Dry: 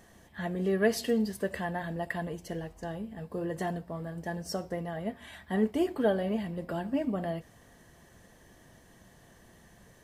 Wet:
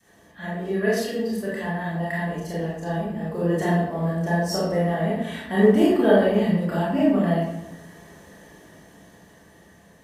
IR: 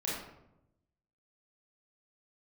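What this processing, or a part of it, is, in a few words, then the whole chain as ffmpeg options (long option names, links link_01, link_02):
far laptop microphone: -filter_complex "[0:a]adynamicequalizer=threshold=0.00891:dfrequency=490:dqfactor=0.75:tfrequency=490:tqfactor=0.75:attack=5:release=100:ratio=0.375:range=2:mode=cutabove:tftype=bell[link_01];[1:a]atrim=start_sample=2205[link_02];[link_01][link_02]afir=irnorm=-1:irlink=0,highpass=frequency=130:poles=1,dynaudnorm=framelen=930:gausssize=5:maxgain=8dB"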